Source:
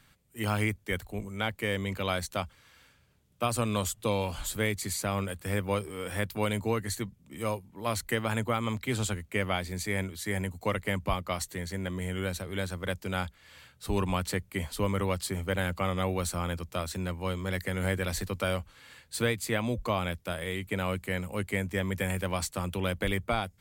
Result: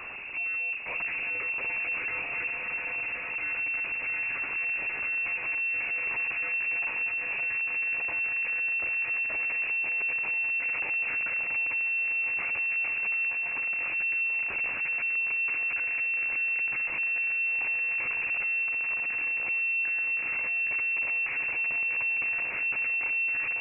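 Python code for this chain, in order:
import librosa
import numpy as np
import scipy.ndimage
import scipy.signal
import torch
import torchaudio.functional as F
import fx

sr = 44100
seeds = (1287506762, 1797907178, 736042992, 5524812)

y = fx.bin_compress(x, sr, power=0.6)
y = fx.peak_eq(y, sr, hz=1100.0, db=-3.5, octaves=0.57)
y = fx.hum_notches(y, sr, base_hz=50, count=3)
y = fx.level_steps(y, sr, step_db=20)
y = fx.lpc_monotone(y, sr, seeds[0], pitch_hz=200.0, order=10)
y = fx.air_absorb(y, sr, metres=460.0)
y = fx.doubler(y, sr, ms=14.0, db=-11.5)
y = fx.echo_diffused(y, sr, ms=679, feedback_pct=79, wet_db=-7.0)
y = fx.power_curve(y, sr, exponent=0.35)
y = fx.freq_invert(y, sr, carrier_hz=2700)
y = y * librosa.db_to_amplitude(-2.0)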